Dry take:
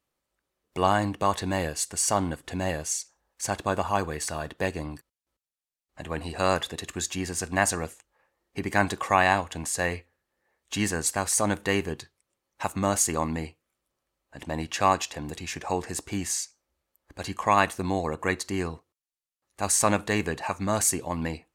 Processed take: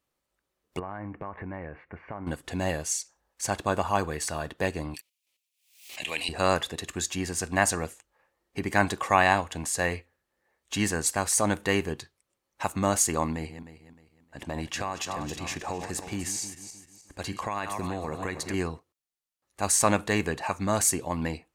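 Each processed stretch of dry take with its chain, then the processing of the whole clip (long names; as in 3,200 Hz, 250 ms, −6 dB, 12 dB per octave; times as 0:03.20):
0:00.79–0:02.27: Chebyshev low-pass filter 2,300 Hz, order 5 + downward compressor 5 to 1, threshold −34 dBFS
0:04.94–0:06.29: high-pass filter 900 Hz 6 dB per octave + high shelf with overshoot 1,900 Hz +9 dB, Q 3 + background raised ahead of every attack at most 100 dB per second
0:13.32–0:18.54: feedback delay that plays each chunk backwards 154 ms, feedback 55%, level −11.5 dB + downward compressor, threshold −27 dBFS
whole clip: no processing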